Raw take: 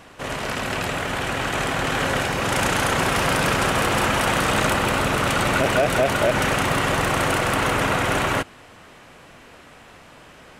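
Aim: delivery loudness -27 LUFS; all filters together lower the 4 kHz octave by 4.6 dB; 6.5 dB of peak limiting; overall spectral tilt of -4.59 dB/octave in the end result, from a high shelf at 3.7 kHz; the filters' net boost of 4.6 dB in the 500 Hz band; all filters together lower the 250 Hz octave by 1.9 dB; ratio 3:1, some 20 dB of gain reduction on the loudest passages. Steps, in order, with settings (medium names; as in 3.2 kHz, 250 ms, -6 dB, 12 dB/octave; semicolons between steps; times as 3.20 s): peaking EQ 250 Hz -5 dB; peaking EQ 500 Hz +7 dB; treble shelf 3.7 kHz -5 dB; peaking EQ 4 kHz -3.5 dB; compression 3:1, threshold -40 dBFS; trim +12.5 dB; peak limiter -17 dBFS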